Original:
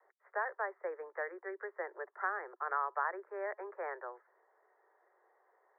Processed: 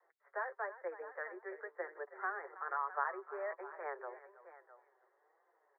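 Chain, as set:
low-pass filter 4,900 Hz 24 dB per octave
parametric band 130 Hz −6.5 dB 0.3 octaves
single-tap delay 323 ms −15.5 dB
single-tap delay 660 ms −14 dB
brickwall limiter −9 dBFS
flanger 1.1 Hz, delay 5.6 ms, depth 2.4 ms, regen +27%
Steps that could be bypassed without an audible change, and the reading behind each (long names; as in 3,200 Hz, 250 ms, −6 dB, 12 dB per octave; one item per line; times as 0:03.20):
low-pass filter 4,900 Hz: nothing at its input above 2,300 Hz
parametric band 130 Hz: nothing at its input below 300 Hz
brickwall limiter −9 dBFS: peak of its input −21.0 dBFS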